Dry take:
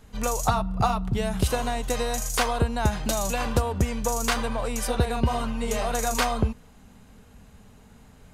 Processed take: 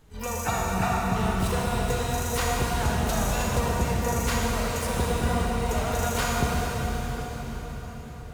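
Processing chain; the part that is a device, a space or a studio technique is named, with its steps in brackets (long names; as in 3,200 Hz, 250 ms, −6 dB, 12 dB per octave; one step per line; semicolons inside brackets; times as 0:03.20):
shimmer-style reverb (pitch-shifted copies added +12 semitones −7 dB; convolution reverb RT60 5.7 s, pre-delay 34 ms, DRR −3.5 dB)
level −6.5 dB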